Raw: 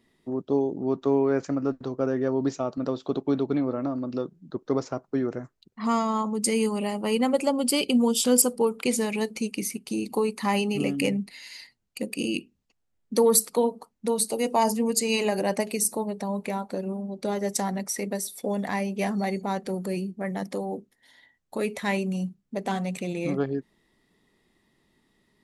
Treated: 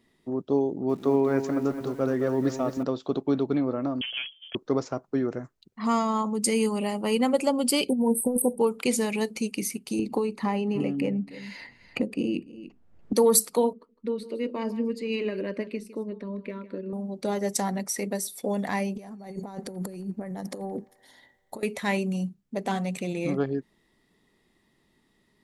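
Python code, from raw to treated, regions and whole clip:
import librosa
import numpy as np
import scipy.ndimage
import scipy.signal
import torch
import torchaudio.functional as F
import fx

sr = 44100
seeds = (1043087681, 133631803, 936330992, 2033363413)

y = fx.chain(x, sr, fx.peak_eq(hz=2000.0, db=5.0, octaves=0.21),
    fx.echo_crushed(ms=213, feedback_pct=55, bits=8, wet_db=-9.0), at=(0.68, 2.83))
y = fx.chain(y, sr, fx.lower_of_two(delay_ms=1.1),
    fx.freq_invert(carrier_hz=3300),
    fx.band_squash(depth_pct=40), at=(4.01, 4.55))
y = fx.chain(y, sr, fx.brickwall_bandstop(low_hz=1000.0, high_hz=8200.0),
    fx.over_compress(threshold_db=-22.0, ratio=-0.5), at=(7.89, 8.59))
y = fx.chain(y, sr, fx.lowpass(hz=1000.0, slope=6),
    fx.echo_single(ms=291, db=-22.5),
    fx.band_squash(depth_pct=100), at=(9.99, 13.13))
y = fx.chain(y, sr, fx.air_absorb(metres=400.0),
    fx.fixed_phaser(hz=320.0, stages=4),
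    fx.echo_single(ms=157, db=-16.0), at=(13.73, 16.93))
y = fx.chain(y, sr, fx.peak_eq(hz=2500.0, db=-8.0, octaves=1.5),
    fx.over_compress(threshold_db=-34.0, ratio=-0.5),
    fx.echo_wet_bandpass(ms=86, feedback_pct=79, hz=1500.0, wet_db=-21.5), at=(18.95, 21.63))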